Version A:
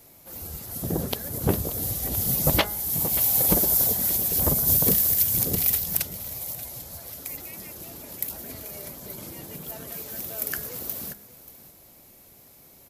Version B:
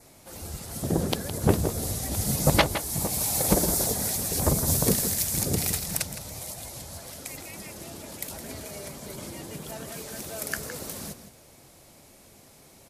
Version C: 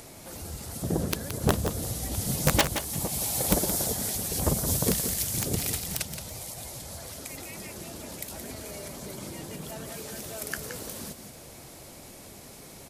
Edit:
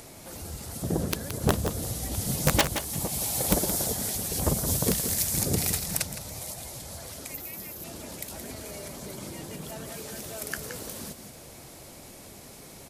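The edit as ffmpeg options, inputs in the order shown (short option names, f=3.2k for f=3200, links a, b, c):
-filter_complex "[2:a]asplit=3[a][b][c];[a]atrim=end=5.102[d];[1:a]atrim=start=5.098:end=6.622[e];[b]atrim=start=6.618:end=7.342[f];[0:a]atrim=start=7.338:end=7.842[g];[c]atrim=start=7.838[h];[d][e]acrossfade=d=0.004:c1=hsin:c2=hsin[i];[i][f]acrossfade=d=0.004:c1=hsin:c2=hsin[j];[j][g]acrossfade=d=0.004:c1=hsin:c2=hsin[k];[k][h]acrossfade=d=0.004:c1=hsin:c2=hsin"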